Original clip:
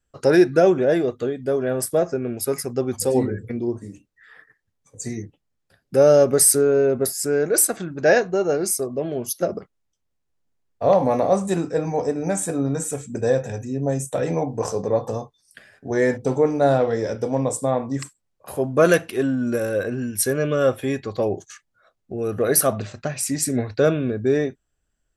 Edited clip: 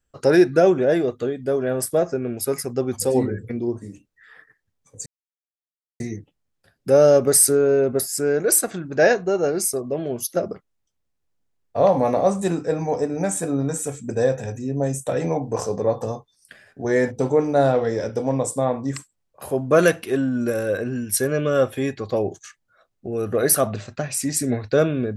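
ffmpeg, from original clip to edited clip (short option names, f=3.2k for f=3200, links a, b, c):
-filter_complex "[0:a]asplit=2[a][b];[a]atrim=end=5.06,asetpts=PTS-STARTPTS,afade=t=out:st=5.056:d=0.004:c=hsin,apad=pad_dur=0.94[c];[b]atrim=start=5.06,asetpts=PTS-STARTPTS,afade=t=in:d=0.004:c=hsin[d];[c][d]concat=n=2:v=0:a=1"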